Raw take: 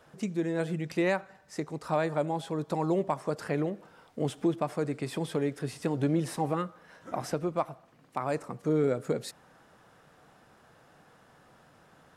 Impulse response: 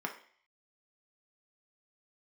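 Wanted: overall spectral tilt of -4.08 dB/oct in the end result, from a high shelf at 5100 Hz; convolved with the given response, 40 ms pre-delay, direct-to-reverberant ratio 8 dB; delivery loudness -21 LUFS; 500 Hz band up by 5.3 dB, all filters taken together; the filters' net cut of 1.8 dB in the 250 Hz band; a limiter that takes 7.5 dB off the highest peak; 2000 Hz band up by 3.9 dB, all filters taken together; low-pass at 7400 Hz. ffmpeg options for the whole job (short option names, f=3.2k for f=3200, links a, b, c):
-filter_complex "[0:a]lowpass=7.4k,equalizer=f=250:t=o:g=-7,equalizer=f=500:t=o:g=8,equalizer=f=2k:t=o:g=5.5,highshelf=f=5.1k:g=-8.5,alimiter=limit=-20dB:level=0:latency=1,asplit=2[a][b];[1:a]atrim=start_sample=2205,adelay=40[c];[b][c]afir=irnorm=-1:irlink=0,volume=-11.5dB[d];[a][d]amix=inputs=2:normalize=0,volume=10dB"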